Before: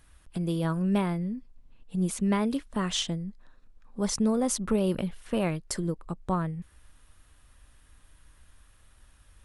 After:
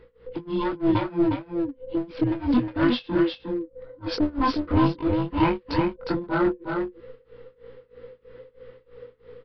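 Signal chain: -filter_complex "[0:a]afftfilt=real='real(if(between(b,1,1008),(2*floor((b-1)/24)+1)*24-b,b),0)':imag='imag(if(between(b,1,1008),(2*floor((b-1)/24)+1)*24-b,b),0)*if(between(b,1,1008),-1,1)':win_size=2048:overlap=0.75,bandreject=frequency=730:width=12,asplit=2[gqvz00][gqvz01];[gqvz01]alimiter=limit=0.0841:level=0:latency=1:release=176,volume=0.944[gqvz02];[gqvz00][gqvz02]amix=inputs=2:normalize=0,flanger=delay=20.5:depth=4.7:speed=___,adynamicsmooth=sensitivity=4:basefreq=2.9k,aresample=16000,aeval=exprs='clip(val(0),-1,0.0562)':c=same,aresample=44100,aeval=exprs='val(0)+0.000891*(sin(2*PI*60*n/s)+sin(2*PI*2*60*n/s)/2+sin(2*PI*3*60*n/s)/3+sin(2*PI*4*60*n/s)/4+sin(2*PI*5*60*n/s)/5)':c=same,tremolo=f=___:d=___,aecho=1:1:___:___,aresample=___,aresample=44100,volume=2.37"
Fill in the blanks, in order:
1, 3.1, 0.96, 359, 0.562, 11025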